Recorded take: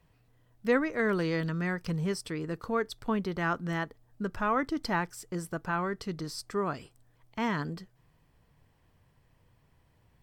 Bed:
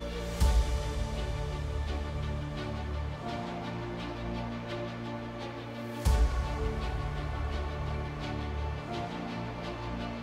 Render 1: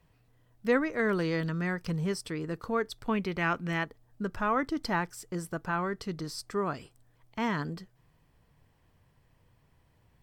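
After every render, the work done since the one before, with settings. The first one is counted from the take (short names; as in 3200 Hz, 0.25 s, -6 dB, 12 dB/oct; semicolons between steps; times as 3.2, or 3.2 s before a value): 3.09–3.85 bell 2400 Hz +11.5 dB 0.43 oct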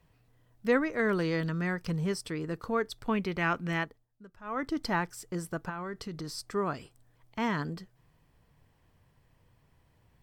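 3.8–4.71 dip -18.5 dB, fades 0.28 s; 5.69–6.44 compressor 10:1, threshold -33 dBFS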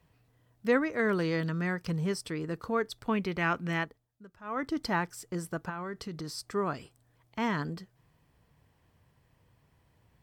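HPF 43 Hz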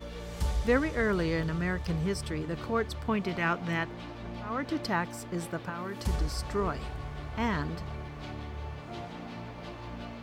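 add bed -4.5 dB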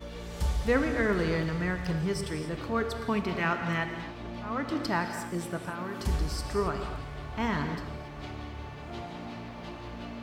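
non-linear reverb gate 0.3 s flat, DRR 5.5 dB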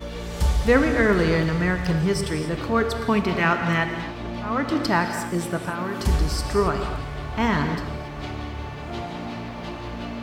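gain +8 dB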